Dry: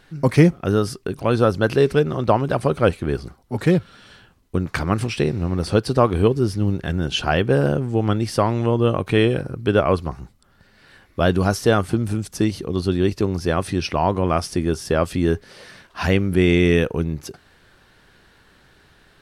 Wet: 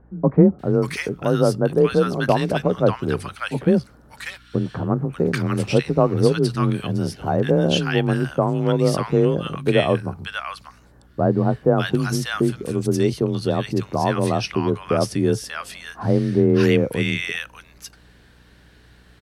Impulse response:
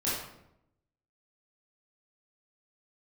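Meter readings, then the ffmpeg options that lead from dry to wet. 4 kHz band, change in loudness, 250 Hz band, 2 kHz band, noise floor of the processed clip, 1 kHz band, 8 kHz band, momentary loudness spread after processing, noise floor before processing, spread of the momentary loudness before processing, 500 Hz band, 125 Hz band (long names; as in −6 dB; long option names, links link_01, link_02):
0.0 dB, −0.5 dB, +0.5 dB, −1.0 dB, −51 dBFS, −1.5 dB, 0.0 dB, 10 LU, −55 dBFS, 9 LU, 0.0 dB, −0.5 dB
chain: -filter_complex "[0:a]acrossover=split=1100[link_01][link_02];[link_02]adelay=590[link_03];[link_01][link_03]amix=inputs=2:normalize=0,afreqshift=26,aeval=exprs='val(0)+0.00251*(sin(2*PI*60*n/s)+sin(2*PI*2*60*n/s)/2+sin(2*PI*3*60*n/s)/3+sin(2*PI*4*60*n/s)/4+sin(2*PI*5*60*n/s)/5)':channel_layout=same"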